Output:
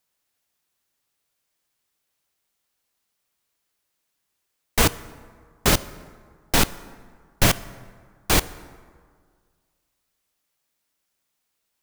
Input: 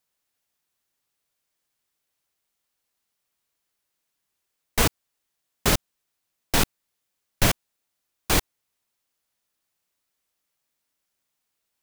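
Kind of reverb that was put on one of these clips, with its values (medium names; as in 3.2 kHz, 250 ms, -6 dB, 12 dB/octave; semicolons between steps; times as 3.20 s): plate-style reverb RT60 1.9 s, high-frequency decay 0.5×, DRR 16 dB; trim +2.5 dB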